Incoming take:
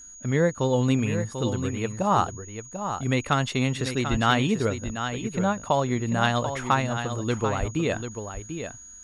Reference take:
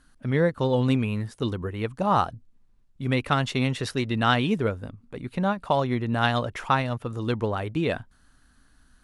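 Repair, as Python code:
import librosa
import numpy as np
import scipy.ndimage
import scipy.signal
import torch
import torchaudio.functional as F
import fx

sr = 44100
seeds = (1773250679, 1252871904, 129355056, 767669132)

y = fx.fix_declip(x, sr, threshold_db=-9.5)
y = fx.notch(y, sr, hz=6700.0, q=30.0)
y = fx.fix_deplosive(y, sr, at_s=(4.1, 7.59))
y = fx.fix_echo_inverse(y, sr, delay_ms=742, level_db=-8.5)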